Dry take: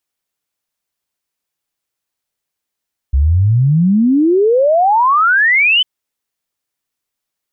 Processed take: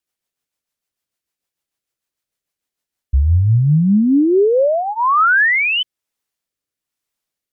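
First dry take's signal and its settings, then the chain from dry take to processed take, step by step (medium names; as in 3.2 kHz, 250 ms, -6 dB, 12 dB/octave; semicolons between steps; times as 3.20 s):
log sweep 64 Hz -> 3.1 kHz 2.70 s -8 dBFS
rotary cabinet horn 6.7 Hz, later 1.1 Hz, at 2.70 s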